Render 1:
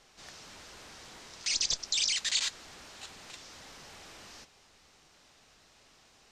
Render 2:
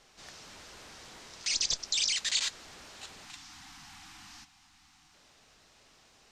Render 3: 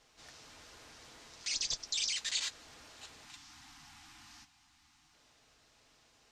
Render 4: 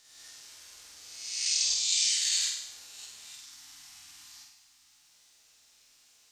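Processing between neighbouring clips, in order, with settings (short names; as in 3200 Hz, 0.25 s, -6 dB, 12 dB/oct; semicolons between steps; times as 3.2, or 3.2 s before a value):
spectral delete 3.24–5.14, 330–710 Hz
notch comb 190 Hz; gain -4 dB
spectral swells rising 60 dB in 1.12 s; pre-emphasis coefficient 0.9; flutter echo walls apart 8.4 m, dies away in 0.8 s; gain +5.5 dB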